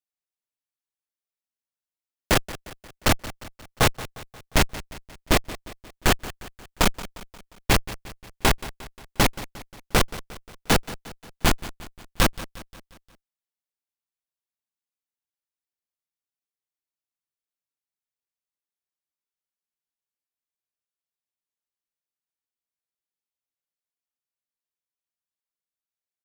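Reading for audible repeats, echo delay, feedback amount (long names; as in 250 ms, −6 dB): 4, 177 ms, 53%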